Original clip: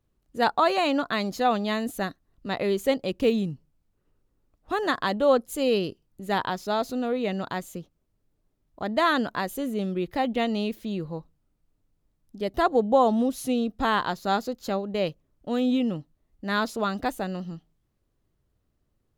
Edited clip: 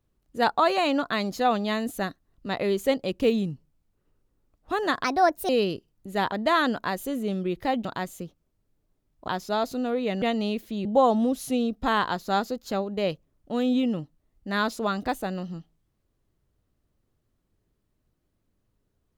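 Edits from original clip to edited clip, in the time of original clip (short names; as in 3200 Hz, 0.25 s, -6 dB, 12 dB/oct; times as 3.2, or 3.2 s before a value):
5.04–5.63 speed 131%
6.46–7.4 swap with 8.83–10.36
10.99–12.82 cut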